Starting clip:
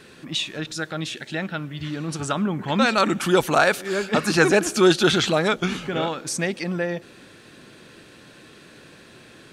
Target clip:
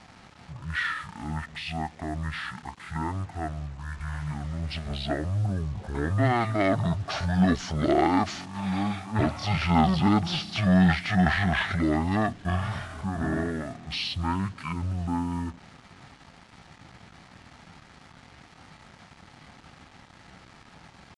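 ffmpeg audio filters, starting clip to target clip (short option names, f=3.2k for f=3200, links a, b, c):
-filter_complex "[0:a]equalizer=f=980:w=7.2:g=-11,asplit=2[a][b];[b]volume=24dB,asoftclip=hard,volume=-24dB,volume=-9.5dB[c];[a][c]amix=inputs=2:normalize=0,atempo=0.9,acrusher=bits=6:mix=0:aa=0.5,asetrate=22050,aresample=44100,volume=-5.5dB"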